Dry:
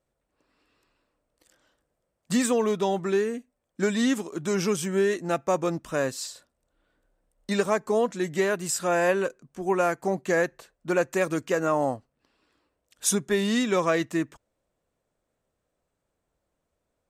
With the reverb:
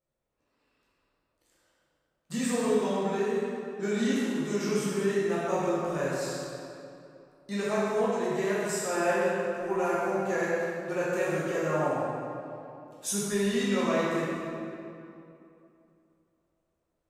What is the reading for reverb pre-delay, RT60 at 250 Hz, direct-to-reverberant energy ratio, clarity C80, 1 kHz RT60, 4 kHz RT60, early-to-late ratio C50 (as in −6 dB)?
10 ms, 2.9 s, −8.5 dB, −2.0 dB, 2.7 s, 1.8 s, −4.0 dB